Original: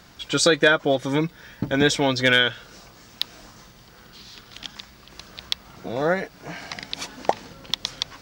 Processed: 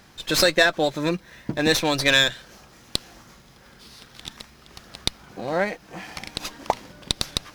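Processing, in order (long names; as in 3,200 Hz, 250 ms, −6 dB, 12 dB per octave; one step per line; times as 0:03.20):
wrong playback speed 44.1 kHz file played as 48 kHz
dynamic equaliser 4,400 Hz, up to +5 dB, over −35 dBFS, Q 0.91
windowed peak hold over 3 samples
level −1.5 dB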